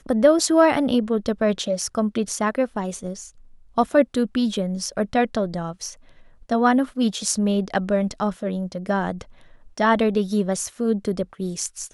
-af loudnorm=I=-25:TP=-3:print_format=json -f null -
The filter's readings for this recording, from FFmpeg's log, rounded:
"input_i" : "-22.6",
"input_tp" : "-3.4",
"input_lra" : "1.3",
"input_thresh" : "-33.1",